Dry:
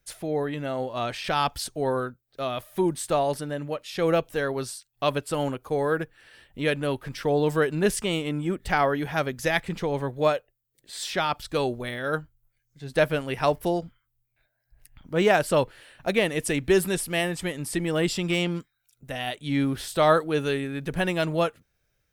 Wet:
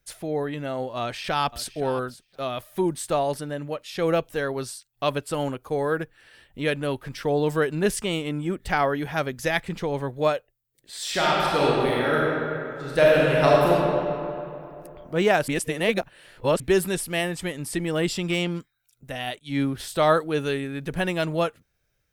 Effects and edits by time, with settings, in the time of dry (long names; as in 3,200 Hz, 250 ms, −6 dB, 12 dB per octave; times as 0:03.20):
0:01.00–0:01.74: delay throw 520 ms, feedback 10%, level −16 dB
0:11.00–0:13.69: thrown reverb, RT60 2.8 s, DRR −5.5 dB
0:15.48–0:16.60: reverse
0:19.39–0:19.80: multiband upward and downward expander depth 100%